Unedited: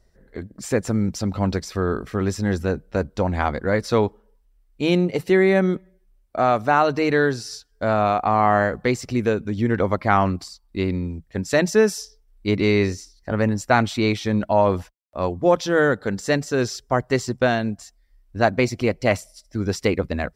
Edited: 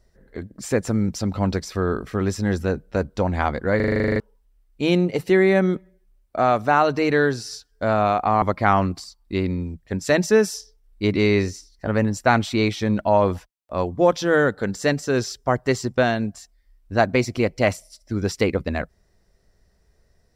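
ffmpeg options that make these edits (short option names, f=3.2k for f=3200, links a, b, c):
-filter_complex "[0:a]asplit=13[a][b][c][d][e][f][g][h][i][j][k][l][m];[a]atrim=end=3.802[n];[b]atrim=start=3.758:end=3.802[o];[c]atrim=start=3.758:end=3.802[p];[d]atrim=start=3.758:end=3.802[q];[e]atrim=start=3.758:end=3.802[r];[f]atrim=start=3.758:end=3.802[s];[g]atrim=start=3.758:end=3.802[t];[h]atrim=start=3.758:end=3.802[u];[i]atrim=start=3.758:end=3.802[v];[j]atrim=start=3.758:end=3.802[w];[k]atrim=start=3.758:end=3.802[x];[l]atrim=start=4.198:end=8.422[y];[m]atrim=start=9.858[z];[n][o]acrossfade=d=0.004:c1=hsin:c2=hsin[aa];[aa][p]acrossfade=d=0.004:c1=hsin:c2=hsin[ab];[ab][q]acrossfade=d=0.004:c1=hsin:c2=hsin[ac];[ac][r]acrossfade=d=0.004:c1=hsin:c2=hsin[ad];[ad][s]acrossfade=d=0.004:c1=hsin:c2=hsin[ae];[ae][t]acrossfade=d=0.004:c1=hsin:c2=hsin[af];[af][u]acrossfade=d=0.004:c1=hsin:c2=hsin[ag];[ag][v]acrossfade=d=0.004:c1=hsin:c2=hsin[ah];[ah][w]acrossfade=d=0.004:c1=hsin:c2=hsin[ai];[ai][x]acrossfade=d=0.004:c1=hsin:c2=hsin[aj];[aj][y]acrossfade=d=0.004:c1=hsin:c2=hsin[ak];[ak][z]acrossfade=d=0.004:c1=hsin:c2=hsin"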